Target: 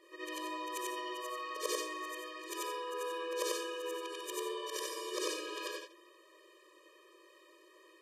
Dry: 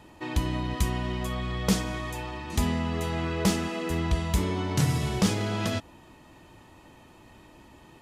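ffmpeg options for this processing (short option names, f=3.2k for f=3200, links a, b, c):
-af "afftfilt=real='re':imag='-im':win_size=8192:overlap=0.75,afftfilt=real='re*eq(mod(floor(b*sr/1024/320),2),1)':imag='im*eq(mod(floor(b*sr/1024/320),2),1)':win_size=1024:overlap=0.75,volume=1dB"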